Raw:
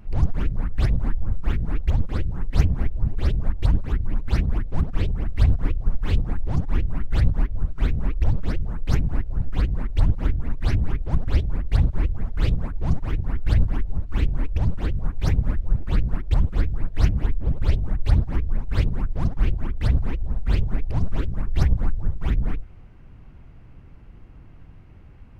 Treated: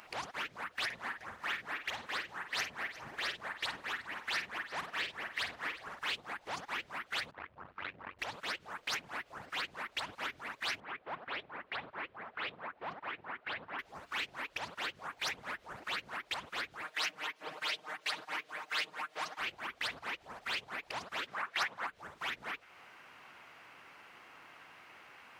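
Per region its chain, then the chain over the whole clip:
0:00.85–0:05.99: parametric band 1,800 Hz +5.5 dB 0.28 octaves + double-tracking delay 50 ms −9 dB + single-tap delay 356 ms −22 dB
0:07.31–0:08.19: tube saturation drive 14 dB, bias 0.55 + ring modulation 47 Hz + high-frequency loss of the air 360 metres
0:10.80–0:13.79: high-pass filter 150 Hz 6 dB per octave + high-frequency loss of the air 460 metres
0:16.82–0:19.40: high-pass filter 200 Hz + low-shelf EQ 420 Hz −5 dB + comb filter 6.5 ms, depth 97%
0:21.27–0:21.87: high-pass filter 110 Hz 24 dB per octave + parametric band 1,300 Hz +9.5 dB 2.2 octaves
whole clip: high-pass filter 1,100 Hz 12 dB per octave; dynamic equaliser 3,200 Hz, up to +4 dB, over −55 dBFS, Q 0.82; downward compressor 2 to 1, threshold −54 dBFS; level +11 dB

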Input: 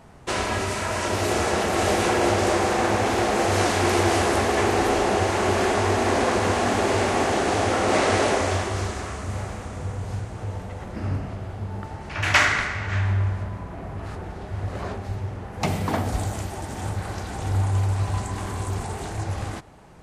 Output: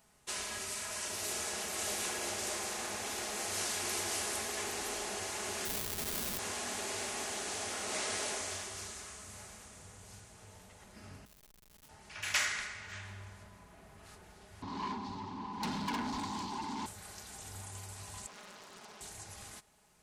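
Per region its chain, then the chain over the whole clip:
0:05.65–0:06.39: low-pass filter 5,600 Hz + comparator with hysteresis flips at −19.5 dBFS
0:11.25–0:11.89: high-pass filter 430 Hz + high-shelf EQ 8,300 Hz +2 dB + comparator with hysteresis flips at −35.5 dBFS
0:14.62–0:16.86: drawn EQ curve 130 Hz 0 dB, 280 Hz +12 dB, 600 Hz −26 dB, 980 Hz +10 dB, 1,400 Hz −23 dB, 4,300 Hz −1 dB, 12,000 Hz −27 dB + mid-hump overdrive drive 29 dB, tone 1,500 Hz, clips at −7 dBFS
0:18.26–0:19.01: Chebyshev band-pass filter 170–4,800 Hz, order 3 + mains-hum notches 50/100/150/200/250/300/350 Hz + highs frequency-modulated by the lows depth 0.79 ms
whole clip: first-order pre-emphasis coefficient 0.9; comb filter 4.8 ms, depth 36%; level −4 dB

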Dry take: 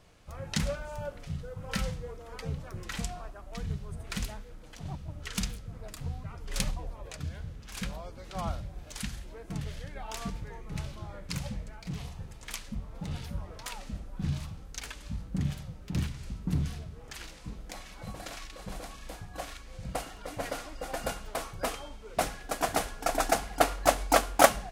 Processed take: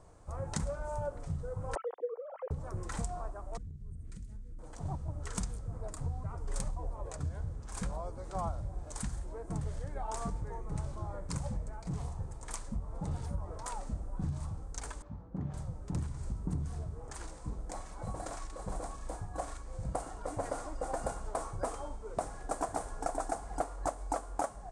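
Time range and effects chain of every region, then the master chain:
0:01.75–0:02.51: three sine waves on the formant tracks + four-pole ladder high-pass 440 Hz, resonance 45%
0:03.57–0:04.59: drawn EQ curve 250 Hz 0 dB, 780 Hz −29 dB, 2,000 Hz −10 dB + downward compressor 10 to 1, threshold −43 dBFS + flutter between parallel walls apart 11.9 metres, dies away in 0.21 s
0:15.02–0:15.54: high-pass filter 270 Hz 6 dB per octave + head-to-tape spacing loss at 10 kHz 37 dB
whole clip: drawn EQ curve 100 Hz 0 dB, 210 Hz −6 dB, 320 Hz −1 dB, 550 Hz −1 dB, 990 Hz +1 dB, 2,800 Hz −19 dB, 5,200 Hz −11 dB, 8,800 Hz +1 dB, 13,000 Hz −26 dB; downward compressor 16 to 1, threshold −34 dBFS; level +3.5 dB

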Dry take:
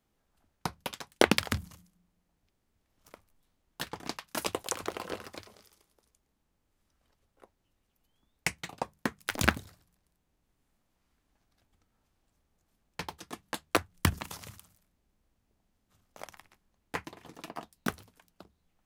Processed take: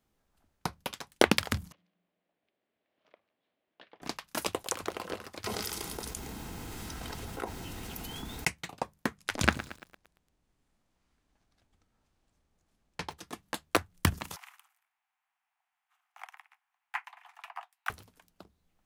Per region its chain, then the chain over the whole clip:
0:01.72–0:04.02: downward compressor 2 to 1, threshold −59 dBFS + loudspeaker in its box 330–3,500 Hz, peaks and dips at 620 Hz +5 dB, 910 Hz −5 dB, 1,300 Hz −5 dB
0:05.44–0:08.48: notch comb filter 580 Hz + envelope flattener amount 70%
0:09.17–0:13.17: low-pass filter 9,800 Hz + feedback echo at a low word length 114 ms, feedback 55%, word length 7 bits, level −15 dB
0:14.36–0:17.90: Butterworth high-pass 720 Hz 96 dB per octave + high shelf with overshoot 3,300 Hz −9 dB, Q 1.5
whole clip: no processing

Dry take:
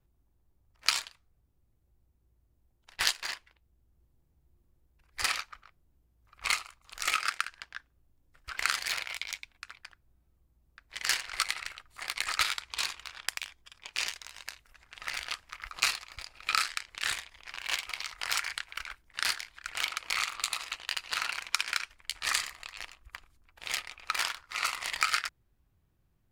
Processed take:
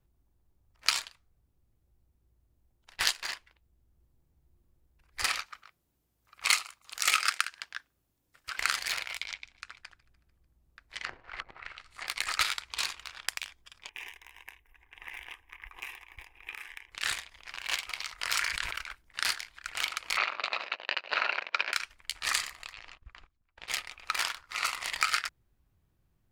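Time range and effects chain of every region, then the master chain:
0:05.46–0:08.58: high-pass filter 200 Hz 6 dB per octave + high-shelf EQ 2,400 Hz +6.5 dB
0:09.24–0:12.07: repeating echo 148 ms, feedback 55%, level −23 dB + treble cut that deepens with the level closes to 440 Hz, closed at −27.5 dBFS
0:13.89–0:16.92: parametric band 7,600 Hz −12.5 dB 0.94 octaves + downward compressor 3 to 1, threshold −36 dBFS + phaser with its sweep stopped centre 900 Hz, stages 8
0:18.19–0:18.76: notch filter 790 Hz, Q 6 + level that may fall only so fast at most 37 dB per second
0:20.17–0:21.73: leveller curve on the samples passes 2 + loudspeaker in its box 300–3,500 Hz, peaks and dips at 410 Hz +3 dB, 590 Hz +9 dB, 1,200 Hz −4 dB, 2,000 Hz −4 dB, 3,300 Hz −8 dB
0:22.73–0:23.68: noise gate −59 dBFS, range −17 dB + compressor whose output falls as the input rises −47 dBFS + Gaussian smoothing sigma 1.5 samples
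whole clip: no processing

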